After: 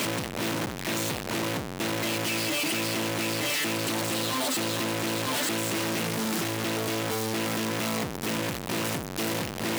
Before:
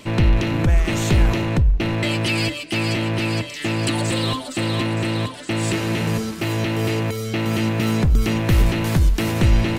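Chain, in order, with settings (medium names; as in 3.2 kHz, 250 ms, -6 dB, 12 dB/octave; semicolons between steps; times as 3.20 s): one-bit comparator; high-pass 160 Hz 12 dB/octave; trim -8.5 dB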